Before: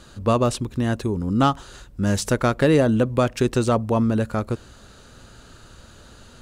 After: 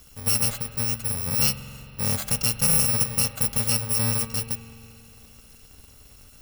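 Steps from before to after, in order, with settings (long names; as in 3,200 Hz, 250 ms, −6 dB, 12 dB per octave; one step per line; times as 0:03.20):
samples in bit-reversed order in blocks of 128 samples
spring reverb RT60 2.7 s, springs 44 ms, chirp 30 ms, DRR 10.5 dB
level −4 dB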